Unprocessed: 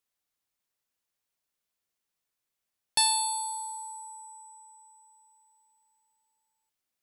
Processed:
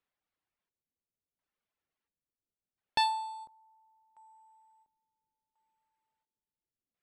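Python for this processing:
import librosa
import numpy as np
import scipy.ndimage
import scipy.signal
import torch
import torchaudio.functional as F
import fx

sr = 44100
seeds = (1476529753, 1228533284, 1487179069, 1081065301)

y = fx.dereverb_blind(x, sr, rt60_s=0.98)
y = fx.filter_lfo_lowpass(y, sr, shape='square', hz=0.72, low_hz=370.0, high_hz=2500.0, q=0.71)
y = fx.end_taper(y, sr, db_per_s=300.0)
y = y * 10.0 ** (3.0 / 20.0)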